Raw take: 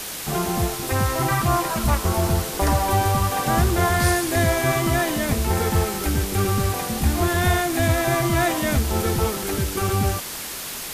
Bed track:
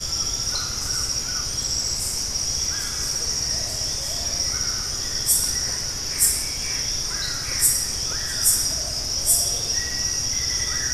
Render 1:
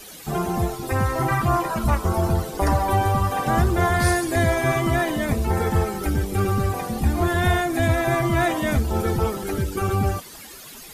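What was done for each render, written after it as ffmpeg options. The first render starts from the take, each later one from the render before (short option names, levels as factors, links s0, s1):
-af "afftdn=nr=14:nf=-32"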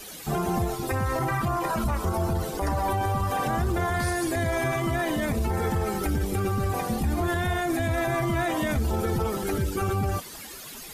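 -af "alimiter=limit=0.126:level=0:latency=1:release=43"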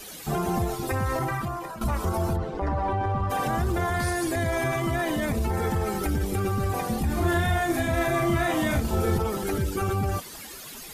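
-filter_complex "[0:a]asplit=3[s0][s1][s2];[s0]afade=t=out:st=2.35:d=0.02[s3];[s1]adynamicsmooth=sensitivity=0.5:basefreq=2400,afade=t=in:st=2.35:d=0.02,afade=t=out:st=3.29:d=0.02[s4];[s2]afade=t=in:st=3.29:d=0.02[s5];[s3][s4][s5]amix=inputs=3:normalize=0,asettb=1/sr,asplit=3[s6][s7][s8];[s6]atrim=end=7.064[s9];[s7]atrim=start=7.06:end=9.18,asetpts=PTS-STARTPTS,afade=t=in:d=0.004:c=qsin,afade=t=out:st=2.116:d=0.004:c=qsin,asplit=2[s10][s11];[s11]adelay=35,volume=0.75[s12];[s10][s12]amix=inputs=2:normalize=0,atrim=end_sample=93492[s13];[s8]atrim=start=9.176[s14];[s9][s13]acrossfade=d=0.004:c1=hsin:c2=qsin[s15];[s15][s14]acrossfade=d=0.004:c1=qsin:c2=hsin,asplit=2[s16][s17];[s16]atrim=end=1.81,asetpts=PTS-STARTPTS,afade=t=out:st=1.15:d=0.66:silence=0.211349[s18];[s17]atrim=start=1.81,asetpts=PTS-STARTPTS,afade=t=in:d=0.004:c=hsin:silence=0.211349[s19];[s18][s19]concat=n=2:v=0:a=1"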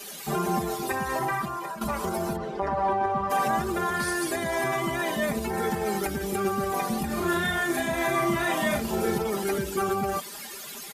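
-af "highpass=f=250:p=1,aecho=1:1:5:0.67"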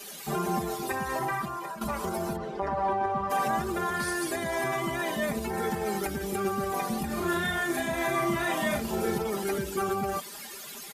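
-af "volume=0.75"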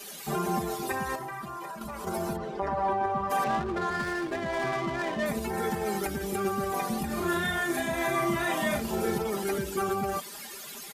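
-filter_complex "[0:a]asettb=1/sr,asplit=3[s0][s1][s2];[s0]atrim=end=1.154[s3];[s1]atrim=start=1.15:end=2.07,asetpts=PTS-STARTPTS,afade=t=in:d=0.004:c=qsin,afade=t=out:st=0.916:d=0.004:c=qsin,acompressor=threshold=0.02:ratio=6:attack=3.2:release=140:knee=1:detection=peak[s4];[s2]atrim=start=2.066[s5];[s3][s4]acrossfade=d=0.004:c1=hsin:c2=qsin[s6];[s6][s5]acrossfade=d=0.004:c1=qsin:c2=hsin,asettb=1/sr,asplit=3[s7][s8][s9];[s7]atrim=end=3.444[s10];[s8]atrim=start=3.44:end=5.26,asetpts=PTS-STARTPTS,afade=t=in:d=0.004:c=qsin,afade=t=out:st=1.816:d=0.004:c=qsin,adynamicsmooth=sensitivity=6:basefreq=750[s11];[s9]atrim=start=5.256[s12];[s10][s11]acrossfade=d=0.004:c1=hsin:c2=qsin[s13];[s13][s12]acrossfade=d=0.004:c1=qsin:c2=hsin"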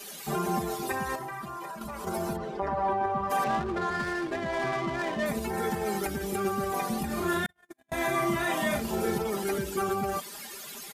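-filter_complex "[0:a]asettb=1/sr,asplit=3[s0][s1][s2];[s0]atrim=end=2.574[s3];[s1]atrim=start=2.57:end=3.23,asetpts=PTS-STARTPTS,afade=t=in:d=0.004:c=qsin,afade=t=out:st=0.656:d=0.004:c=qsin,equalizer=f=7800:t=o:w=2:g=-3.5[s4];[s2]atrim=start=3.226[s5];[s3][s4]acrossfade=d=0.004:c1=hsin:c2=qsin[s6];[s6][s5]acrossfade=d=0.004:c1=qsin:c2=hsin,asettb=1/sr,asplit=3[s7][s8][s9];[s7]atrim=end=3.764[s10];[s8]atrim=start=3.76:end=4.92,asetpts=PTS-STARTPTS,afade=t=in:d=0.004:c=qsin,afade=t=out:st=1.156:d=0.004:c=qsin,highshelf=f=12000:g=-7[s11];[s9]atrim=start=4.916[s12];[s10][s11]acrossfade=d=0.004:c1=hsin:c2=qsin[s13];[s13][s12]acrossfade=d=0.004:c1=qsin:c2=hsin,asettb=1/sr,asplit=3[s14][s15][s16];[s14]atrim=end=7.464[s17];[s15]atrim=start=7.46:end=7.92,asetpts=PTS-STARTPTS,afade=t=in:d=0.004:c=qsin,afade=t=out:st=0.456:d=0.004:c=qsin,agate=range=0.002:threshold=0.0562:ratio=16:release=100:detection=peak[s18];[s16]atrim=start=7.916[s19];[s17][s18]acrossfade=d=0.004:c1=hsin:c2=qsin[s20];[s20][s19]acrossfade=d=0.004:c1=qsin:c2=hsin"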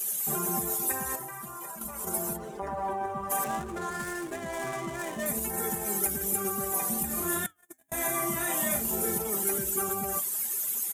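-af "aexciter=amount=5.3:drive=7.7:freq=6600,flanger=delay=3.9:depth=1.9:regen=-81:speed=1.1:shape=sinusoidal"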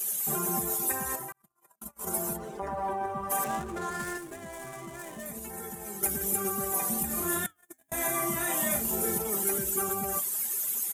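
-filter_complex "[0:a]asettb=1/sr,asplit=3[s0][s1][s2];[s0]atrim=end=1.324[s3];[s1]atrim=start=1.32:end=2.06,asetpts=PTS-STARTPTS,afade=t=in:d=0.004:c=qsin,afade=t=out:st=0.736:d=0.004:c=qsin,agate=range=0.00447:threshold=0.0141:ratio=16:release=100:detection=peak[s4];[s2]atrim=start=2.056[s5];[s3][s4]acrossfade=d=0.004:c1=hsin:c2=qsin[s6];[s6][s5]acrossfade=d=0.004:c1=qsin:c2=hsin,asettb=1/sr,asplit=3[s7][s8][s9];[s7]atrim=end=2.734[s10];[s8]atrim=start=2.73:end=3.34,asetpts=PTS-STARTPTS,afade=t=in:d=0.004:c=qsin,afade=t=out:st=0.606:d=0.004:c=qsin,bandreject=f=7000:w=11[s11];[s9]atrim=start=3.336[s12];[s10][s11]acrossfade=d=0.004:c1=hsin:c2=qsin[s13];[s13][s12]acrossfade=d=0.004:c1=qsin:c2=hsin,asettb=1/sr,asplit=3[s14][s15][s16];[s14]atrim=end=4.174[s17];[s15]atrim=start=4.17:end=6.03,asetpts=PTS-STARTPTS,afade=t=in:d=0.004:c=qsin,afade=t=out:st=1.856:d=0.004:c=qsin,acrossover=split=150|8000[s18][s19][s20];[s18]acompressor=threshold=0.00251:ratio=4[s21];[s19]acompressor=threshold=0.00891:ratio=4[s22];[s20]acompressor=threshold=0.00631:ratio=4[s23];[s21][s22][s23]amix=inputs=3:normalize=0[s24];[s16]atrim=start=6.026[s25];[s17][s24]acrossfade=d=0.004:c1=hsin:c2=qsin[s26];[s26][s25]acrossfade=d=0.004:c1=qsin:c2=hsin"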